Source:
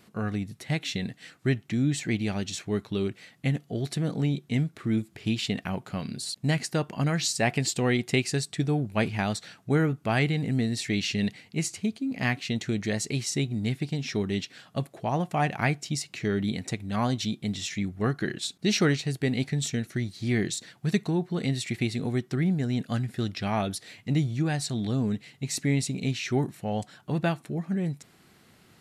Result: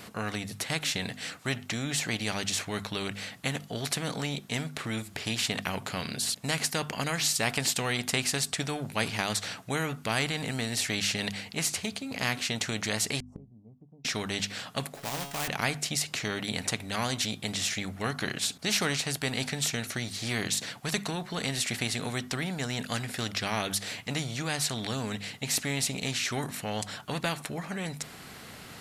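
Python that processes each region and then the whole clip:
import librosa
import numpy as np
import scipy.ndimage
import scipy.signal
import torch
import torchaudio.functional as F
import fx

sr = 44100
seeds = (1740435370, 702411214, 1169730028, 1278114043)

y = fx.chain(x, sr, fx.ellip_lowpass(hz=1100.0, order=4, stop_db=40),
    fx.gate_flip(shuts_db=-33.0, range_db=-34), at=(13.2, 14.05))
y = fx.chain(y, sr, fx.quant_companded(bits=4),
    fx.comb_fb(f0_hz=140.0, decay_s=0.53, harmonics='all', damping=0.0, mix_pct=80), at=(14.94, 15.48))
y = fx.peak_eq(y, sr, hz=350.0, db=-10.5, octaves=0.25)
y = fx.hum_notches(y, sr, base_hz=50, count=5)
y = fx.spectral_comp(y, sr, ratio=2.0)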